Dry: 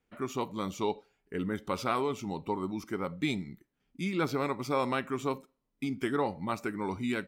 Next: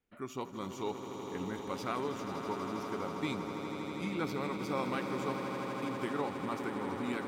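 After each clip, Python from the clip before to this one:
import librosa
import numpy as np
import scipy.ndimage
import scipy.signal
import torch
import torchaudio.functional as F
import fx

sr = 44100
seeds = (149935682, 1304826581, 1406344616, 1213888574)

y = fx.echo_swell(x, sr, ms=81, loudest=8, wet_db=-11)
y = F.gain(torch.from_numpy(y), -6.5).numpy()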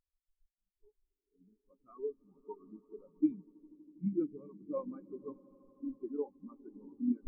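y = fx.fade_in_head(x, sr, length_s=2.35)
y = fx.dmg_noise_colour(y, sr, seeds[0], colour='brown', level_db=-50.0)
y = fx.spectral_expand(y, sr, expansion=4.0)
y = F.gain(torch.from_numpy(y), 2.5).numpy()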